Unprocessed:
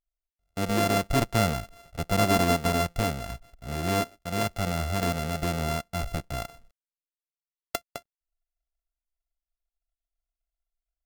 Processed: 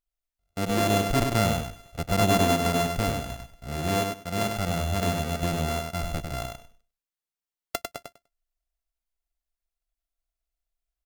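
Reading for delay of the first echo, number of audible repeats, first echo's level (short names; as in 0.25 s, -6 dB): 99 ms, 2, -5.0 dB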